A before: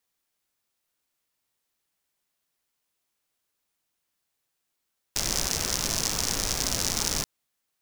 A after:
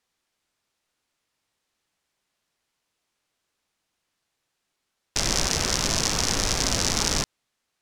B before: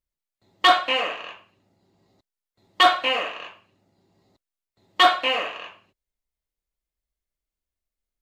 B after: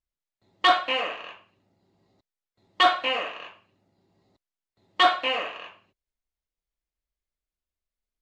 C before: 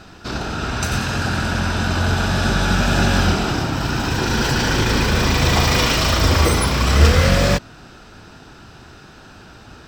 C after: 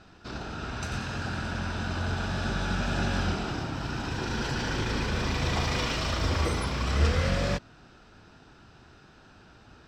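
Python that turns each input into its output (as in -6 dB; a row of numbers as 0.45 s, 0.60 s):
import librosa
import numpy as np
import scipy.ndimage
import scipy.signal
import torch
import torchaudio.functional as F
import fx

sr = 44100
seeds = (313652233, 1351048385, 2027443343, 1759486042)

y = fx.air_absorb(x, sr, metres=51.0)
y = y * 10.0 ** (-30 / 20.0) / np.sqrt(np.mean(np.square(y)))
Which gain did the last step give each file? +6.0 dB, -2.5 dB, -11.5 dB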